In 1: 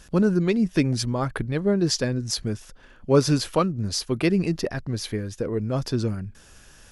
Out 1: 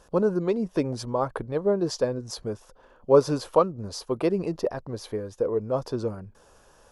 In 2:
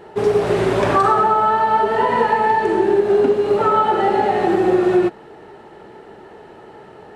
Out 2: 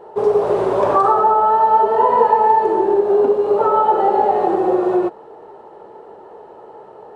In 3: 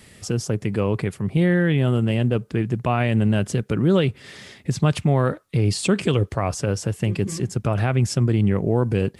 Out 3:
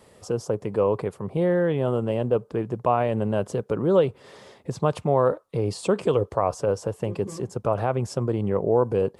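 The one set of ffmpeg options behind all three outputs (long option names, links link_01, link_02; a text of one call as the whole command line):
ffmpeg -i in.wav -af "equalizer=frequency=500:width_type=o:width=1:gain=12,equalizer=frequency=1000:width_type=o:width=1:gain=12,equalizer=frequency=2000:width_type=o:width=1:gain=-5,volume=-9.5dB" out.wav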